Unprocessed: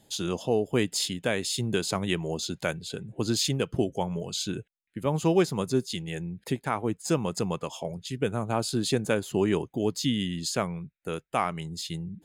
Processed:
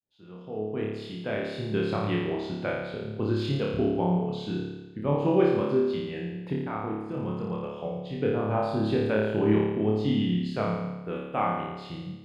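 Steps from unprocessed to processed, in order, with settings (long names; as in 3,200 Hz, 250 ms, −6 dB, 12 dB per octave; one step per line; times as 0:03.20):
fade in at the beginning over 1.90 s
0:06.53–0:07.78: output level in coarse steps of 16 dB
high-frequency loss of the air 430 metres
flutter between parallel walls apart 4.8 metres, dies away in 1.1 s
level −2 dB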